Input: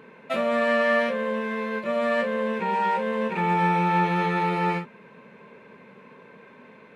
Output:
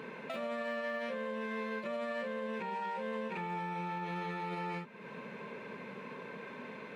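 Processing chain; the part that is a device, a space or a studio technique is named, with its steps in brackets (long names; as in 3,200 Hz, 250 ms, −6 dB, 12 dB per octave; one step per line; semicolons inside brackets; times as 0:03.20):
broadcast voice chain (high-pass filter 96 Hz; de-essing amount 100%; downward compressor 3 to 1, threshold −42 dBFS, peak gain reduction 17 dB; parametric band 5,000 Hz +3.5 dB 1.5 octaves; brickwall limiter −33 dBFS, peak gain reduction 5.5 dB)
level +3 dB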